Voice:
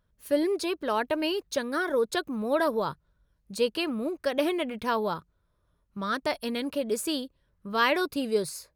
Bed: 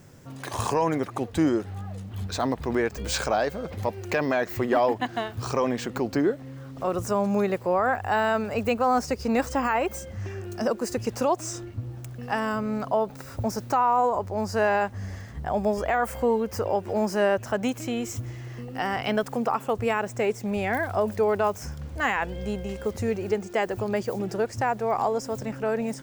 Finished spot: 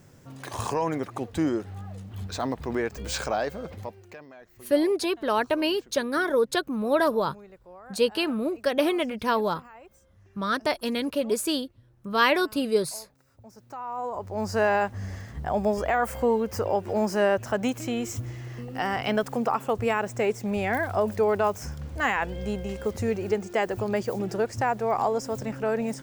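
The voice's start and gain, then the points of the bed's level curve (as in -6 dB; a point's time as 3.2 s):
4.40 s, +3.0 dB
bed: 3.68 s -3 dB
4.3 s -24 dB
13.39 s -24 dB
14.47 s 0 dB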